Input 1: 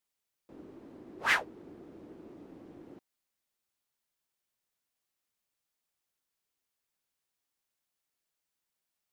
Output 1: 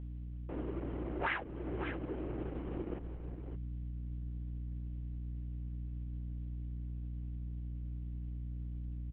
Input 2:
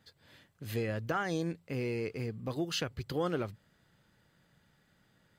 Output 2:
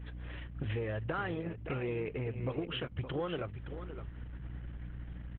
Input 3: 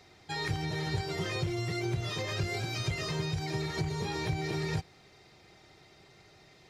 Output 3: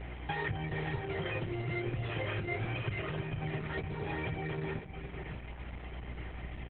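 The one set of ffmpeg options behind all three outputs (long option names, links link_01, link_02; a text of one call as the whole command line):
ffmpeg -i in.wav -filter_complex "[0:a]adynamicequalizer=threshold=0.00126:dfrequency=950:dqfactor=5:tfrequency=950:tqfactor=5:attack=5:release=100:ratio=0.375:range=2:mode=cutabove:tftype=bell,asuperstop=centerf=3800:order=4:qfactor=3.5,aeval=exprs='val(0)+0.002*(sin(2*PI*60*n/s)+sin(2*PI*2*60*n/s)/2+sin(2*PI*3*60*n/s)/3+sin(2*PI*4*60*n/s)/4+sin(2*PI*5*60*n/s)/5)':channel_layout=same,asplit=2[link_01][link_02];[link_02]volume=32.5dB,asoftclip=hard,volume=-32.5dB,volume=-5.5dB[link_03];[link_01][link_03]amix=inputs=2:normalize=0,acompressor=threshold=-40dB:ratio=16,equalizer=frequency=220:width_type=o:width=0.73:gain=-7,asplit=2[link_04][link_05];[link_05]aecho=0:1:567:0.355[link_06];[link_04][link_06]amix=inputs=2:normalize=0,volume=9.5dB" -ar 48000 -c:a libopus -b:a 8k out.opus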